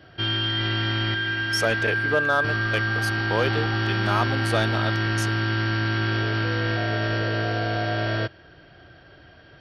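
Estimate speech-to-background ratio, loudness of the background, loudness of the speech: −4.0 dB, −24.0 LKFS, −28.0 LKFS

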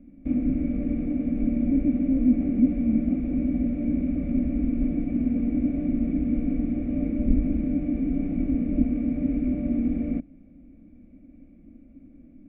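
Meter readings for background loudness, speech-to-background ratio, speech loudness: −26.0 LKFS, 0.0 dB, −26.0 LKFS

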